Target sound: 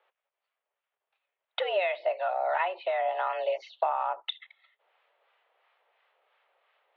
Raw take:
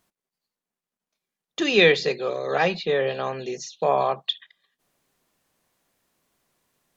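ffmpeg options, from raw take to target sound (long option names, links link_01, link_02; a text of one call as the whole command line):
ffmpeg -i in.wav -filter_complex "[0:a]asettb=1/sr,asplit=3[link_01][link_02][link_03];[link_01]atrim=end=1.594[link_04];[link_02]atrim=start=1.59:end=3.3,asetpts=PTS-STARTPTS,afade=type=in:duration=0.004:curve=qsin,afade=type=out:start_time=1.706:duration=0.004:curve=qsin,highshelf=frequency=2300:gain=-10[link_05];[link_03]atrim=start=3.296[link_06];[link_04][link_05]acrossfade=duration=0.004:curve1=hsin:curve2=qsin[link_07];[link_07][link_06]acrossfade=duration=0.004:curve1=qsin:curve2=hsin,acompressor=threshold=-29dB:ratio=12,acrossover=split=680[link_08][link_09];[link_08]aeval=exprs='val(0)*(1-0.5/2+0.5/2*cos(2*PI*2.9*n/s))':channel_layout=same[link_10];[link_09]aeval=exprs='val(0)*(1-0.5/2-0.5/2*cos(2*PI*2.9*n/s))':channel_layout=same[link_11];[link_10][link_11]amix=inputs=2:normalize=0,asettb=1/sr,asplit=3[link_12][link_13][link_14];[link_12]atrim=end=3.894[link_15];[link_13]atrim=start=3.89:end=4.32,asetpts=PTS-STARTPTS,afade=type=in:duration=0.004:curve=qsin,afade=type=out:start_time=0.426:duration=0.004:curve=qsin,adynamicsmooth=sensitivity=2.5:basefreq=2000[link_16];[link_14]atrim=start=4.316[link_17];[link_15][link_16]acrossfade=duration=0.004:curve1=hsin:curve2=qsin[link_18];[link_18][link_17]acrossfade=duration=0.004:curve1=qsin:curve2=hsin,highpass=frequency=320:width_type=q:width=0.5412,highpass=frequency=320:width_type=q:width=1.307,lowpass=frequency=3100:width_type=q:width=0.5176,lowpass=frequency=3100:width_type=q:width=0.7071,lowpass=frequency=3100:width_type=q:width=1.932,afreqshift=180,volume=7.5dB" out.wav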